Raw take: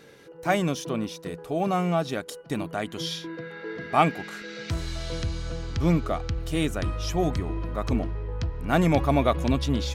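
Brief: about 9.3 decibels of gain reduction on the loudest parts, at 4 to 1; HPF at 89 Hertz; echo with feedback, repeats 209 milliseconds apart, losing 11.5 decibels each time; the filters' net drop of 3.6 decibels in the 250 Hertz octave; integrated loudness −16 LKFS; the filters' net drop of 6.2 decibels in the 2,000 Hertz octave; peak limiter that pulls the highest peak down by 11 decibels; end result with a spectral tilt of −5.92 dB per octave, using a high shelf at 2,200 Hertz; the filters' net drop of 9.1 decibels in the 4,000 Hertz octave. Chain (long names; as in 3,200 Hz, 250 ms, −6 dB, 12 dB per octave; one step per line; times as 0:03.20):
high-pass filter 89 Hz
parametric band 250 Hz −5 dB
parametric band 2,000 Hz −4.5 dB
high-shelf EQ 2,200 Hz −4 dB
parametric band 4,000 Hz −6.5 dB
downward compressor 4 to 1, threshold −28 dBFS
brickwall limiter −28 dBFS
repeating echo 209 ms, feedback 27%, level −11.5 dB
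level +22 dB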